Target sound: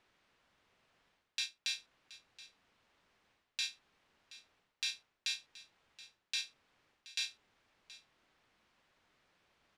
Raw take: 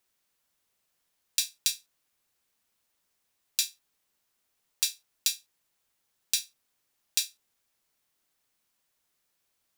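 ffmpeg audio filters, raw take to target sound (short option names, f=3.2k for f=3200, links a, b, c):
-af "areverse,acompressor=threshold=-36dB:ratio=6,areverse,lowpass=2.8k,aecho=1:1:725:0.126,volume=11dB"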